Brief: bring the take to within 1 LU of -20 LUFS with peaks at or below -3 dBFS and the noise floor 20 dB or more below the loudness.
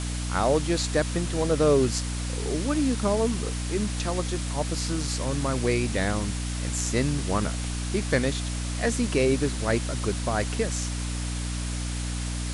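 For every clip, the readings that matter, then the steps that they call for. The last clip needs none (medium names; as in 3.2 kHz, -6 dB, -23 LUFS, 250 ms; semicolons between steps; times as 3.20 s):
hum 60 Hz; highest harmonic 300 Hz; hum level -28 dBFS; noise floor -30 dBFS; noise floor target -47 dBFS; loudness -26.5 LUFS; peak level -7.5 dBFS; loudness target -20.0 LUFS
-> hum notches 60/120/180/240/300 Hz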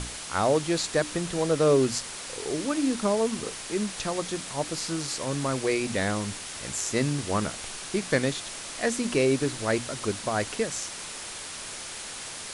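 hum not found; noise floor -39 dBFS; noise floor target -48 dBFS
-> noise reduction 9 dB, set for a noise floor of -39 dBFS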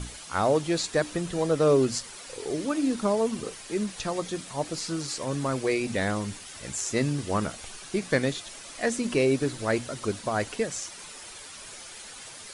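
noise floor -44 dBFS; noise floor target -48 dBFS
-> noise reduction 6 dB, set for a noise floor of -44 dBFS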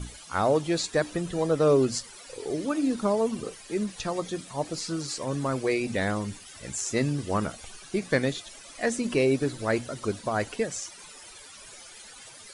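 noise floor -47 dBFS; noise floor target -48 dBFS
-> noise reduction 6 dB, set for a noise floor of -47 dBFS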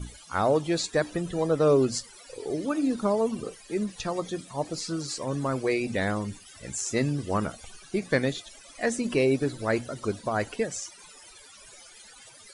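noise floor -51 dBFS; loudness -28.0 LUFS; peak level -9.5 dBFS; loudness target -20.0 LUFS
-> trim +8 dB; peak limiter -3 dBFS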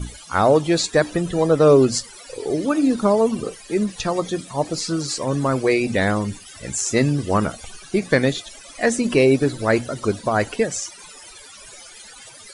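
loudness -20.0 LUFS; peak level -3.0 dBFS; noise floor -43 dBFS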